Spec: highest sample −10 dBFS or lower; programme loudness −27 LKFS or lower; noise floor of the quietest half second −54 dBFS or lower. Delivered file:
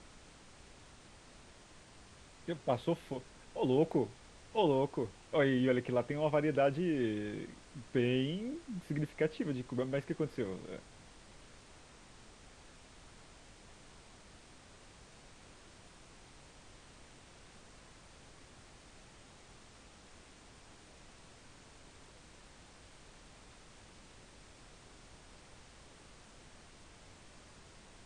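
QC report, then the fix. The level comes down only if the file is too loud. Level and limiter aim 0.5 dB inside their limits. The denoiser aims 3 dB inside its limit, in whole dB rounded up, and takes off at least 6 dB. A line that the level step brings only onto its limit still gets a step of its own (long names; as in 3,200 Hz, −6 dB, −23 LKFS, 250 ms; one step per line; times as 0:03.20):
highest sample −17.5 dBFS: in spec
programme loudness −35.0 LKFS: in spec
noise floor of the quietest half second −58 dBFS: in spec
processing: no processing needed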